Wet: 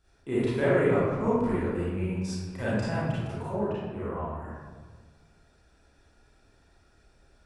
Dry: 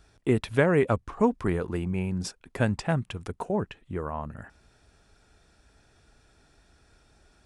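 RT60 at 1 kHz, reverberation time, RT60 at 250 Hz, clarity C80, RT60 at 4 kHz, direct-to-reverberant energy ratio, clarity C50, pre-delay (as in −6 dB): 1.4 s, 1.5 s, 1.8 s, −0.5 dB, 0.85 s, −11.5 dB, −4.0 dB, 29 ms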